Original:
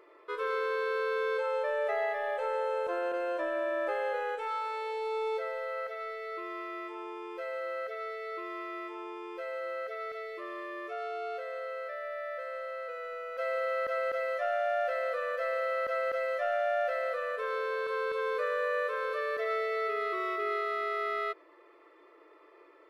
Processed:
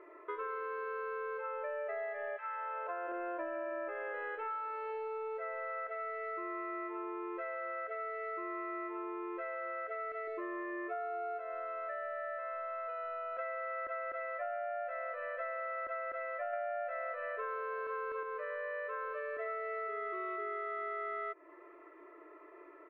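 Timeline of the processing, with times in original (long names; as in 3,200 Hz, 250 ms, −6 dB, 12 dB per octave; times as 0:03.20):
0:02.36–0:03.07: high-pass filter 1,100 Hz → 410 Hz 24 dB per octave
0:10.27–0:13.37: comb filter 2.8 ms, depth 68%
0:16.53–0:18.23: clip gain +5 dB
whole clip: low-pass filter 2,300 Hz 24 dB per octave; comb filter 3 ms, depth 59%; downward compressor, threshold −38 dBFS; level +1 dB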